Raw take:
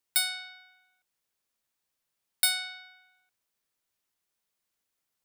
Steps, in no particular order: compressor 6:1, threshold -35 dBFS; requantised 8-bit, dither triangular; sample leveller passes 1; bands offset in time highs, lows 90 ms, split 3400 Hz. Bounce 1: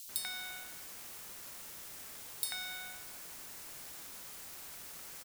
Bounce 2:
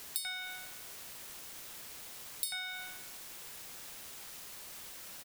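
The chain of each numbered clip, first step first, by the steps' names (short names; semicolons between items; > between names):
sample leveller > compressor > requantised > bands offset in time; sample leveller > bands offset in time > requantised > compressor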